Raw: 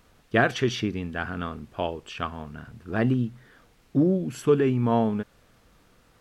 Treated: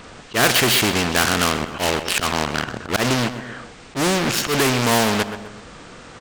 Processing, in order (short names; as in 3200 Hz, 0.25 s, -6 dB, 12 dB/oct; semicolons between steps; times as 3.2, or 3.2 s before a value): nonlinear frequency compression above 2700 Hz 1.5:1; in parallel at -10 dB: fuzz box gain 35 dB, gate -38 dBFS; on the sum: low shelf 100 Hz -11 dB; auto swell 0.116 s; on a send: feedback echo 0.127 s, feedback 30%, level -18.5 dB; on the sum: spectral compressor 2:1; gain +4 dB